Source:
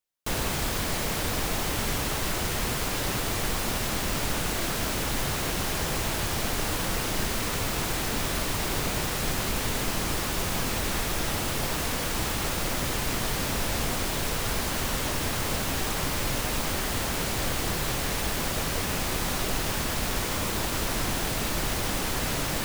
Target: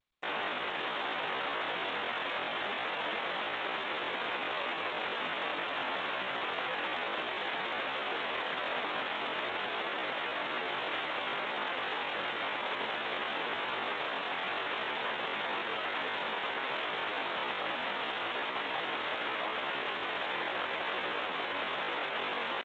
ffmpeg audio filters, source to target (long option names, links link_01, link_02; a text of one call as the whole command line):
ffmpeg -i in.wav -af "lowpass=2600,aecho=1:1:568|1136|1704|2272:0.1|0.052|0.027|0.0141,asetrate=74167,aresample=44100,atempo=0.594604,aresample=8000,aeval=exprs='sgn(val(0))*max(abs(val(0))-0.00119,0)':channel_layout=same,aresample=44100,highpass=530" -ar 16000 -c:a g722 out.g722